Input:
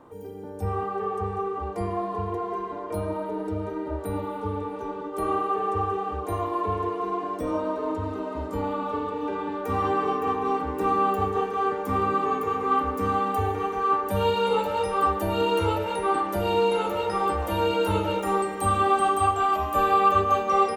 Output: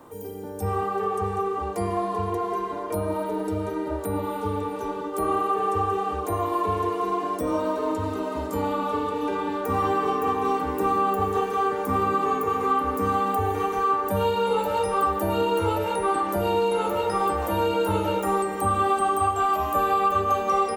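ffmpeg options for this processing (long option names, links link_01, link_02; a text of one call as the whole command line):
ffmpeg -i in.wav -filter_complex "[0:a]crystalizer=i=2.5:c=0,acrossover=split=83|1800[link_01][link_02][link_03];[link_01]acompressor=threshold=-45dB:ratio=4[link_04];[link_02]acompressor=threshold=-22dB:ratio=4[link_05];[link_03]acompressor=threshold=-43dB:ratio=4[link_06];[link_04][link_05][link_06]amix=inputs=3:normalize=0,volume=2.5dB" out.wav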